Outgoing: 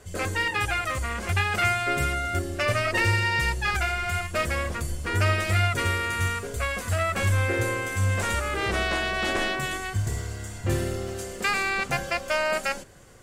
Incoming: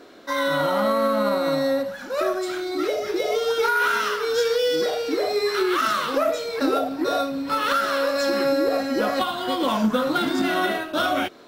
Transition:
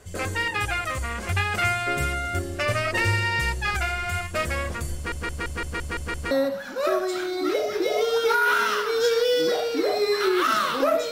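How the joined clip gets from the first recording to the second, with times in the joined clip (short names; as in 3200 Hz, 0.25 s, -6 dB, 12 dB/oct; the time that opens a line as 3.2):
outgoing
4.95 stutter in place 0.17 s, 8 plays
6.31 switch to incoming from 1.65 s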